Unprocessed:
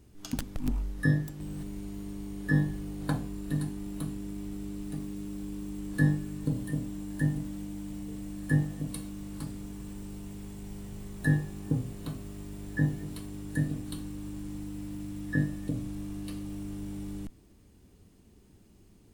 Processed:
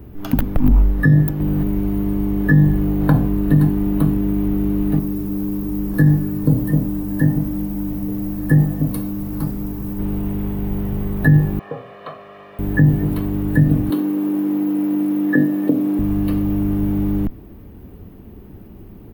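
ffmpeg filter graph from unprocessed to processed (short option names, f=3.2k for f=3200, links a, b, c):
-filter_complex "[0:a]asettb=1/sr,asplit=3[a][b][c];[a]atrim=end=4.994[d];[b]atrim=start=4.99:end=9.99,asetpts=PTS-STARTPTS,afade=t=in:d=0.004:c=qsin,afade=t=out:st=4.996:d=0.004:c=qsin,highshelf=f=4.2k:t=q:w=1.5:g=7,flanger=delay=4.7:depth=6:regen=-62:speed=1.1:shape=triangular[e];[c]atrim=start=9.986[f];[d][e]acrossfade=d=0.004:c1=hsin:c2=qsin[g];[g][f]acrossfade=d=0.004:c1=qsin:c2=hsin,asettb=1/sr,asplit=3[h][i][j];[h]atrim=end=11.594[k];[i]atrim=start=11.59:end=12.59,asetpts=PTS-STARTPTS,afade=t=in:d=0.004:c=qsin,afade=t=out:st=0.996:d=0.004:c=qsin,highpass=770,lowpass=3.2k,aecho=1:1:1.7:0.7,atrim=end_sample=44100[l];[j]atrim=start=12.586[m];[k][l]acrossfade=d=0.004:c1=hsin:c2=qsin[n];[n][m]acrossfade=d=0.004:c1=qsin:c2=hsin,asettb=1/sr,asplit=3[o][p][q];[o]atrim=end=13.904[r];[p]atrim=start=13.9:end=15.99,asetpts=PTS-STARTPTS,afade=t=in:d=0.004:c=qsin,afade=t=out:st=2.086:d=0.004:c=qsin,highpass=f=280:w=0.5412,highpass=f=280:w=1.3066,lowshelf=f=420:g=8.5[s];[q]atrim=start=15.986[t];[r][s]acrossfade=d=0.004:c1=hsin:c2=qsin[u];[u][t]acrossfade=d=0.004:c1=qsin:c2=hsin,firequalizer=gain_entry='entry(720,0);entry(4700,-19);entry(7800,-26);entry(15000,3)':delay=0.05:min_phase=1,acrossover=split=210|3000[v][w][x];[w]acompressor=threshold=-35dB:ratio=6[y];[v][y][x]amix=inputs=3:normalize=0,alimiter=level_in=22.5dB:limit=-1dB:release=50:level=0:latency=1,volume=-3dB"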